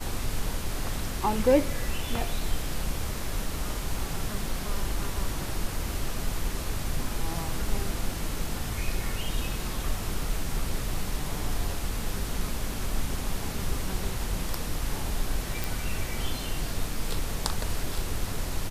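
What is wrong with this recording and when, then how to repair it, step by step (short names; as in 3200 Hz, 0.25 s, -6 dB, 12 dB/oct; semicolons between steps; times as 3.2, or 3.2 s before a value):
15.64 pop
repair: de-click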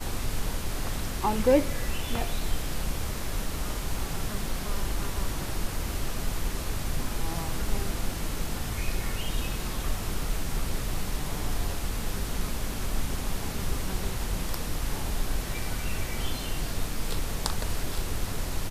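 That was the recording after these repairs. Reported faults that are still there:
none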